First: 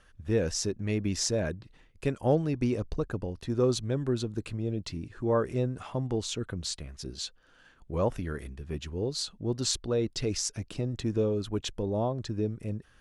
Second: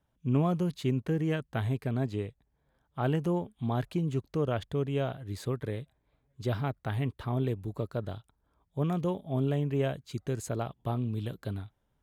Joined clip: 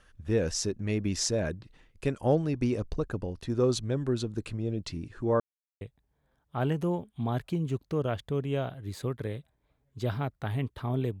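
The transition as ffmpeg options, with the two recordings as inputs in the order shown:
-filter_complex "[0:a]apad=whole_dur=11.2,atrim=end=11.2,asplit=2[s0][s1];[s0]atrim=end=5.4,asetpts=PTS-STARTPTS,afade=t=out:st=5.396:d=0.004:c=hsin[s2];[s1]atrim=start=5.4:end=5.81,asetpts=PTS-STARTPTS,volume=0[s3];[1:a]atrim=start=2.24:end=7.63,asetpts=PTS-STARTPTS,afade=t=in:d=0.004:c=hsin[s4];[s2][s3][s4]concat=n=3:v=0:a=1"

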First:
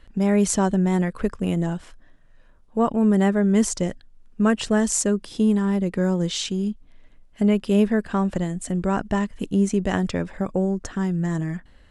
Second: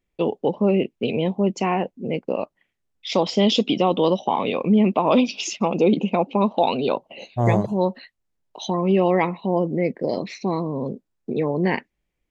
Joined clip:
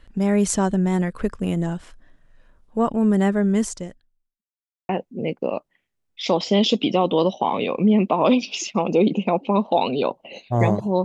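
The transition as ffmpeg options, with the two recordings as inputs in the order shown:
-filter_complex "[0:a]apad=whole_dur=11.04,atrim=end=11.04,asplit=2[s0][s1];[s0]atrim=end=4.42,asetpts=PTS-STARTPTS,afade=t=out:st=3.48:d=0.94:c=qua[s2];[s1]atrim=start=4.42:end=4.89,asetpts=PTS-STARTPTS,volume=0[s3];[1:a]atrim=start=1.75:end=7.9,asetpts=PTS-STARTPTS,afade=t=in:d=0.004:c=hsin[s4];[s2][s3][s4]concat=n=3:v=0:a=1"

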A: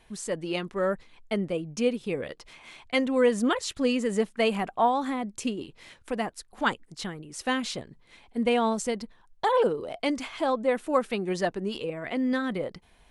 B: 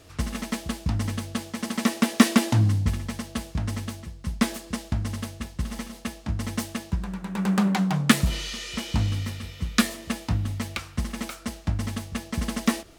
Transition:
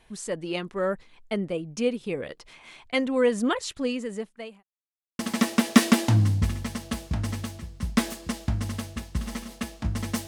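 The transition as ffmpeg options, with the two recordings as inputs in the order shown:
-filter_complex "[0:a]apad=whole_dur=10.27,atrim=end=10.27,asplit=2[s0][s1];[s0]atrim=end=4.63,asetpts=PTS-STARTPTS,afade=t=out:st=3.58:d=1.05[s2];[s1]atrim=start=4.63:end=5.19,asetpts=PTS-STARTPTS,volume=0[s3];[1:a]atrim=start=1.63:end=6.71,asetpts=PTS-STARTPTS,afade=t=in:d=0.004:c=hsin[s4];[s2][s3][s4]concat=n=3:v=0:a=1"

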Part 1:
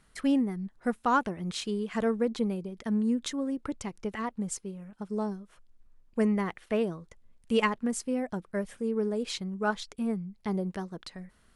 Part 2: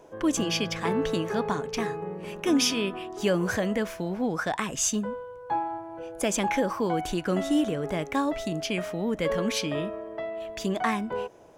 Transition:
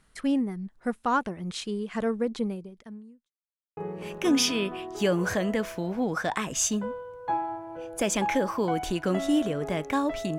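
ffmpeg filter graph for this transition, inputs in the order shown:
-filter_complex "[0:a]apad=whole_dur=10.38,atrim=end=10.38,asplit=2[s0][s1];[s0]atrim=end=3.32,asetpts=PTS-STARTPTS,afade=t=out:st=2.46:d=0.86:c=qua[s2];[s1]atrim=start=3.32:end=3.77,asetpts=PTS-STARTPTS,volume=0[s3];[1:a]atrim=start=1.99:end=8.6,asetpts=PTS-STARTPTS,afade=t=in:d=0.004:c=hsin[s4];[s2][s3][s4]concat=n=3:v=0:a=1"

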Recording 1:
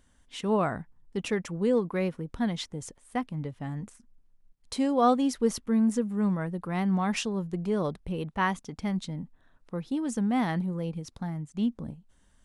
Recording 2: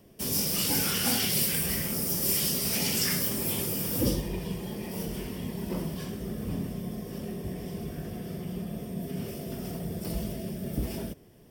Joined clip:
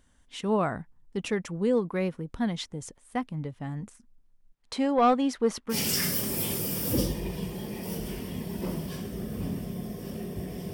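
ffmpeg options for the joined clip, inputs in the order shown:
-filter_complex "[0:a]asettb=1/sr,asplit=3[s0][s1][s2];[s0]atrim=end=4.544[s3];[s1]atrim=start=4.54:end=5.77,asetpts=PTS-STARTPTS,afade=t=in:d=0.004:c=qsin,afade=t=out:st=1.226:d=0.004:c=qsin,asplit=2[s4][s5];[s5]highpass=f=720:p=1,volume=3.98,asoftclip=type=tanh:threshold=0.224[s6];[s4][s6]amix=inputs=2:normalize=0,lowpass=f=2100:p=1,volume=0.501[s7];[s2]atrim=start=5.766[s8];[s3][s7]acrossfade=d=0.004:c1=hsin:c2=qsin[s9];[s9][s8]acrossfade=d=0.004:c1=qsin:c2=hsin,apad=whole_dur=10.73,atrim=end=10.73,atrim=end=5.77,asetpts=PTS-STARTPTS[s10];[1:a]atrim=start=2.77:end=7.81,asetpts=PTS-STARTPTS[s11];[s10][s11]acrossfade=d=0.08:c1=tri:c2=tri"

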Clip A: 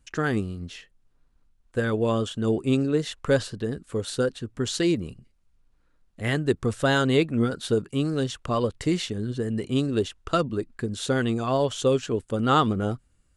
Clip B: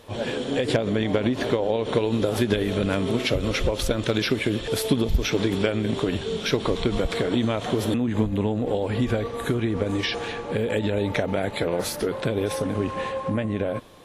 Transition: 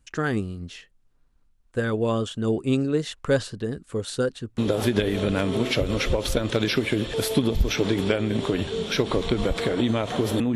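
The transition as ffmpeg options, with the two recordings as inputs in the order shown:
-filter_complex "[0:a]apad=whole_dur=10.55,atrim=end=10.55,atrim=end=4.582[s0];[1:a]atrim=start=2.118:end=8.09[s1];[s0][s1]acrossfade=d=0.004:c1=hsin:c2=hsin"

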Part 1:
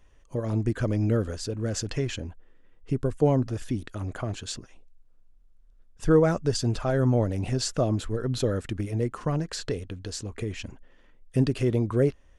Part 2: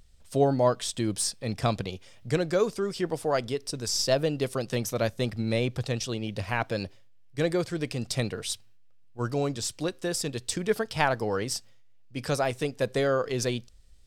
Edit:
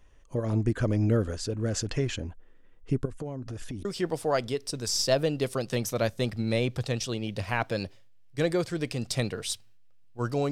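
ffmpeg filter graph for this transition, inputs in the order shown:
-filter_complex "[0:a]asettb=1/sr,asplit=3[s0][s1][s2];[s0]atrim=end=3.054[s3];[s1]atrim=start=3.05:end=3.85,asetpts=PTS-STARTPTS,afade=t=in:d=0.004:c=qsin,afade=t=out:st=0.796:d=0.004:c=qsin,acompressor=threshold=0.0251:ratio=8:attack=3.2:release=140:knee=1:detection=peak[s4];[s2]atrim=start=3.846[s5];[s3][s4]acrossfade=d=0.004:c1=hsin:c2=qsin[s6];[s6][s5]acrossfade=d=0.004:c1=qsin:c2=hsin,apad=whole_dur=10.51,atrim=end=10.51,atrim=end=3.852[s7];[1:a]atrim=start=2.848:end=9.51[s8];[s7][s8]acrossfade=d=0.004:c1=hsin:c2=hsin"

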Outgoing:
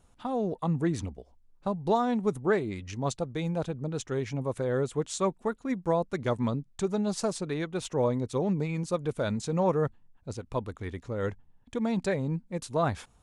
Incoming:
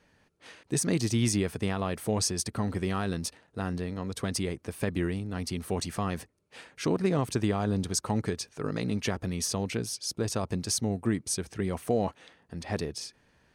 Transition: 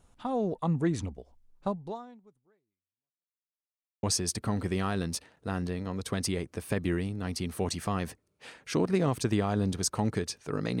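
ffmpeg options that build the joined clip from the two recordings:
-filter_complex "[0:a]apad=whole_dur=10.8,atrim=end=10.8,asplit=2[s0][s1];[s0]atrim=end=3.58,asetpts=PTS-STARTPTS,afade=t=out:st=1.68:d=1.9:c=exp[s2];[s1]atrim=start=3.58:end=4.03,asetpts=PTS-STARTPTS,volume=0[s3];[1:a]atrim=start=2.14:end=8.91,asetpts=PTS-STARTPTS,afade=t=in:d=0.004:c=hsin[s4];[s2][s3][s4]concat=n=3:v=0:a=1"

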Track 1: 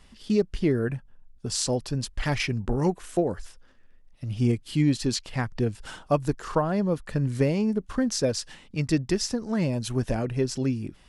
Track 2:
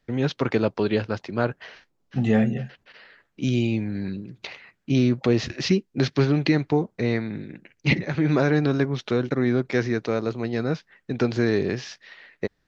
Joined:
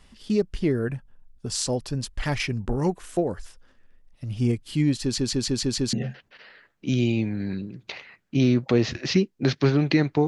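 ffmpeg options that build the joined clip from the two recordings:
-filter_complex "[0:a]apad=whole_dur=10.27,atrim=end=10.27,asplit=6[s0][s1][s2][s3][s4][s5];[s0]atrim=end=5.182[s6];[s1]atrim=start=5.028:end=5.182[s7];[s2]atrim=start=5.028:end=5.182[s8];[s3]atrim=start=5.028:end=5.182[s9];[s4]atrim=start=5.028:end=5.182[s10];[s5]atrim=start=5.028:end=5.182[s11];[1:a]atrim=start=2.478:end=6.82[s12];[s6][s7]acrossfade=d=0.004:c1=hsin:c2=hsin[s13];[s13][s8]acrossfade=d=0.004:c1=hsin:c2=hsin[s14];[s14][s9]acrossfade=d=0.004:c1=hsin:c2=hsin[s15];[s15][s10]acrossfade=d=0.004:c1=hsin:c2=hsin[s16];[s16][s11]acrossfade=d=0.004:c1=hsin:c2=hsin[s17];[s17][s12]acrossfade=d=0.004:c1=hsin:c2=hsin"

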